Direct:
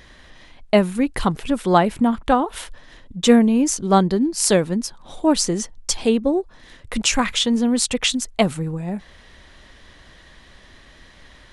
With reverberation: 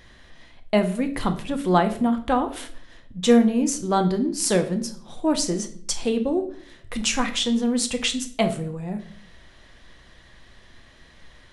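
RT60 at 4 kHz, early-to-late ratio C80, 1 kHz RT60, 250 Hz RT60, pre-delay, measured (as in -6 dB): 0.45 s, 16.0 dB, 0.45 s, 0.75 s, 6 ms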